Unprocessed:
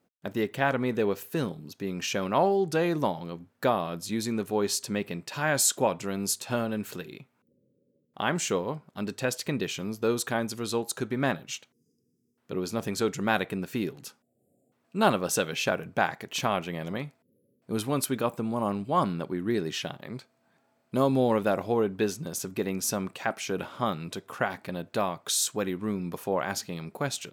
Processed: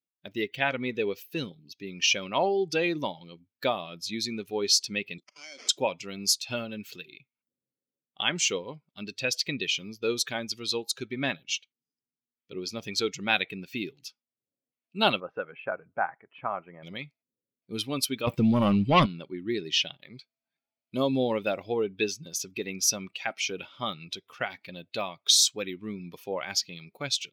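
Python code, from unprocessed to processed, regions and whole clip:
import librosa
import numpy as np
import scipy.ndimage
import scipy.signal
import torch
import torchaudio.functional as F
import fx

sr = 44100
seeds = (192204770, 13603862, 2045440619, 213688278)

y = fx.chain(x, sr, fx.level_steps(step_db=19),
    fx.sample_hold(seeds[0], rate_hz=3800.0, jitter_pct=0),
    fx.cabinet(low_hz=220.0, low_slope=24, high_hz=8300.0, hz=(850.0, 1700.0, 2700.0, 7300.0), db=(-5, -4, -7, 4)), at=(5.18, 5.69))
y = fx.chain(y, sr, fx.lowpass(hz=1400.0, slope=24),
    fx.tilt_shelf(db=-5.5, hz=660.0), at=(15.2, 16.83))
y = fx.chain(y, sr, fx.low_shelf(hz=180.0, db=9.5),
    fx.leveller(passes=2), at=(18.27, 19.06))
y = fx.bin_expand(y, sr, power=1.5)
y = fx.band_shelf(y, sr, hz=3700.0, db=12.5, octaves=1.7)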